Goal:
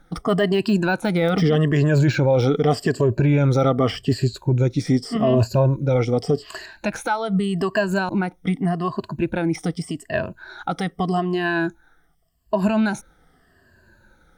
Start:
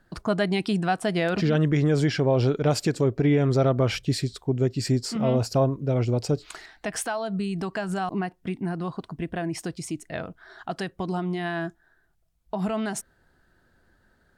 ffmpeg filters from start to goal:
-af "afftfilt=real='re*pow(10,15/40*sin(2*PI*(1.4*log(max(b,1)*sr/1024/100)/log(2)-(-0.84)*(pts-256)/sr)))':imag='im*pow(10,15/40*sin(2*PI*(1.4*log(max(b,1)*sr/1024/100)/log(2)-(-0.84)*(pts-256)/sr)))':win_size=1024:overlap=0.75,deesser=0.9,alimiter=limit=0.178:level=0:latency=1:release=19,volume=1.78"

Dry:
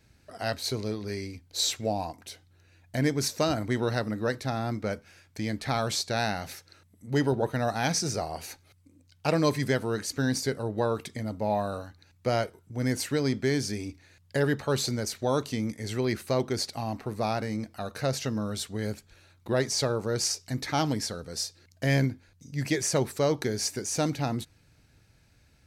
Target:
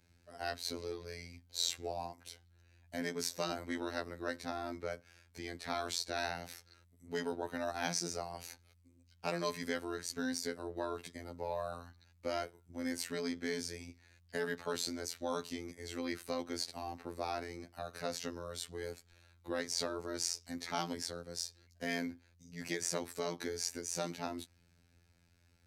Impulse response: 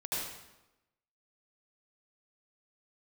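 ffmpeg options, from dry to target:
-filter_complex "[0:a]afftfilt=real='hypot(re,im)*cos(PI*b)':imag='0':win_size=2048:overlap=0.75,acrossover=split=210|990[s0][s1][s2];[s0]acompressor=threshold=0.00398:ratio=4[s3];[s1]acompressor=threshold=0.0282:ratio=4[s4];[s3][s4][s2]amix=inputs=3:normalize=0,volume=0.596"

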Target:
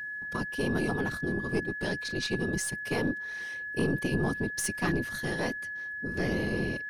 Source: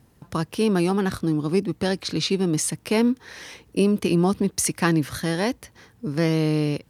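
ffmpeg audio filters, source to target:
-af "afftfilt=real='hypot(re,im)*cos(2*PI*random(0))':imag='hypot(re,im)*sin(2*PI*random(1))':win_size=512:overlap=0.75,aeval=exprs='(tanh(8.91*val(0)+0.4)-tanh(0.4))/8.91':c=same,aeval=exprs='val(0)+0.02*sin(2*PI*1700*n/s)':c=same,volume=0.891"

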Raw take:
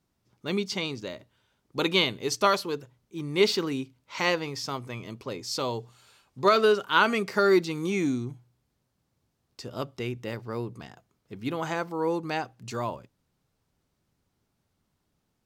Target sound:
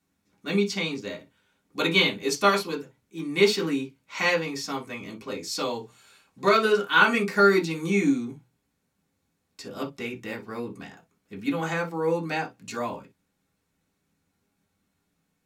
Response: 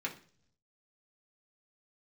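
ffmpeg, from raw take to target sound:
-filter_complex "[0:a]equalizer=f=11000:t=o:w=1.6:g=6[s0];[1:a]atrim=start_sample=2205,atrim=end_sample=3087[s1];[s0][s1]afir=irnorm=-1:irlink=0"

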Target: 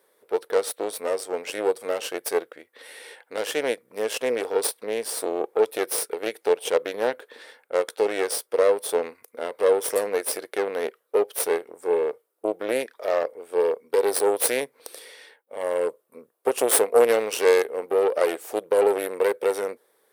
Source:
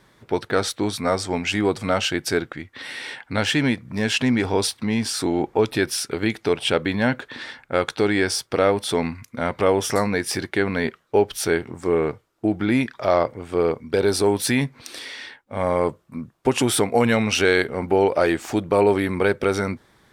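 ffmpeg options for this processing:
-af "aexciter=amount=4.6:drive=7.5:freq=9500,aeval=exprs='0.891*(cos(1*acos(clip(val(0)/0.891,-1,1)))-cos(1*PI/2))+0.2*(cos(3*acos(clip(val(0)/0.891,-1,1)))-cos(3*PI/2))+0.158*(cos(4*acos(clip(val(0)/0.891,-1,1)))-cos(4*PI/2))':c=same,highpass=f=470:t=q:w=4.9,equalizer=f=8200:w=1.2:g=4.5,volume=0.75"

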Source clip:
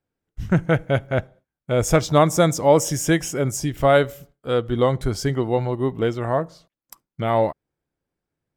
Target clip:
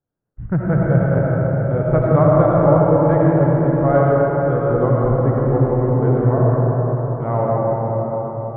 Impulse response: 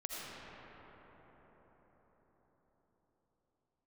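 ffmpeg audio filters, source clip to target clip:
-filter_complex "[0:a]lowpass=f=1500:w=0.5412,lowpass=f=1500:w=1.3066,equalizer=f=130:t=o:w=0.56:g=6.5[s0];[1:a]atrim=start_sample=2205[s1];[s0][s1]afir=irnorm=-1:irlink=0,volume=1.12"

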